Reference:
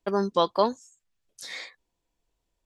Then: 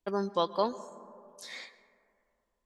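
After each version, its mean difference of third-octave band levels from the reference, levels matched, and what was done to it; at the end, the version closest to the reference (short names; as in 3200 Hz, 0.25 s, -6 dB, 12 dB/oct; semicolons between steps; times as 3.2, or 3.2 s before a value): 3.5 dB: plate-style reverb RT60 2.5 s, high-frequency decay 0.25×, pre-delay 0.11 s, DRR 16.5 dB; gain -6 dB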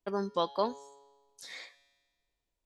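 2.5 dB: resonator 140 Hz, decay 1.4 s, mix 60%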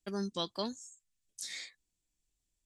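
5.0 dB: ten-band EQ 500 Hz -9 dB, 1000 Hz -12 dB, 8000 Hz +10 dB; gain -5.5 dB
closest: second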